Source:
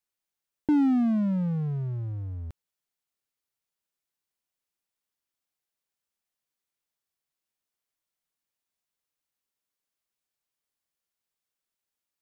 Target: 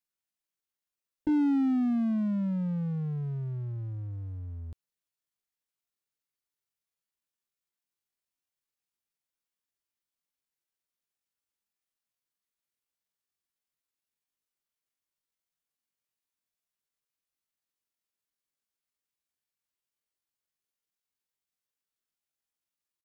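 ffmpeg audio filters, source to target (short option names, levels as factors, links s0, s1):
-af "atempo=0.53,equalizer=f=700:w=1.5:g=-3,volume=0.668"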